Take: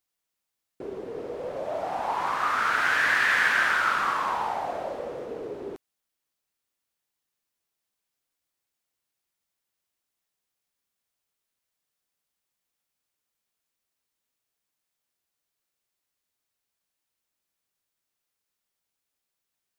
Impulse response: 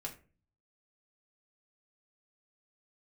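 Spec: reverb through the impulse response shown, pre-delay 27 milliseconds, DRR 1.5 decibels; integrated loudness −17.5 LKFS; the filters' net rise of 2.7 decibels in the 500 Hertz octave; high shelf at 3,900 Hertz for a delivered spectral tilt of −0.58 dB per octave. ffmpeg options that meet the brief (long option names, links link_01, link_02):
-filter_complex "[0:a]equalizer=frequency=500:width_type=o:gain=3.5,highshelf=frequency=3900:gain=-8,asplit=2[link_01][link_02];[1:a]atrim=start_sample=2205,adelay=27[link_03];[link_02][link_03]afir=irnorm=-1:irlink=0,volume=0dB[link_04];[link_01][link_04]amix=inputs=2:normalize=0,volume=6.5dB"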